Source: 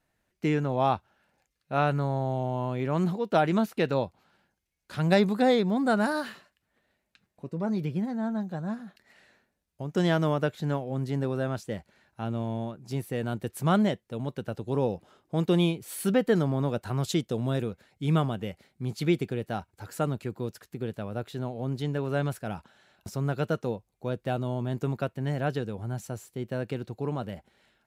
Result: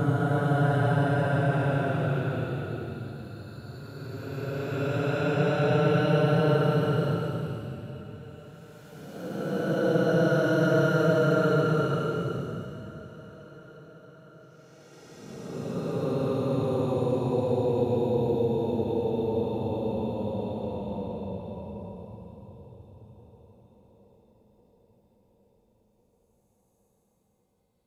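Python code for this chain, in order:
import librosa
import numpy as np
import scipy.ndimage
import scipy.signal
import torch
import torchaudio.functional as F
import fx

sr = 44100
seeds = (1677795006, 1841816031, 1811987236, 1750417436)

y = fx.paulstretch(x, sr, seeds[0], factor=44.0, window_s=0.05, from_s=23.28)
y = fx.echo_swing(y, sr, ms=1400, ratio=1.5, feedback_pct=48, wet_db=-22.0)
y = F.gain(torch.from_numpy(y), 2.0).numpy()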